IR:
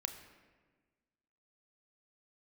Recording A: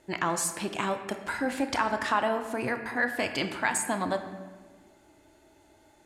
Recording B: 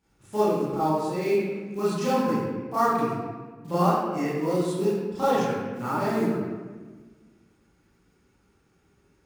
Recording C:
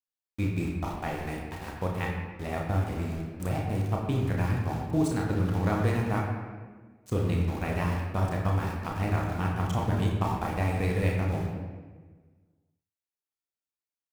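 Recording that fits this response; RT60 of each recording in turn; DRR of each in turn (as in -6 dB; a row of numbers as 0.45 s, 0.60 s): A; 1.4 s, 1.4 s, 1.4 s; 7.0 dB, -11.5 dB, -1.5 dB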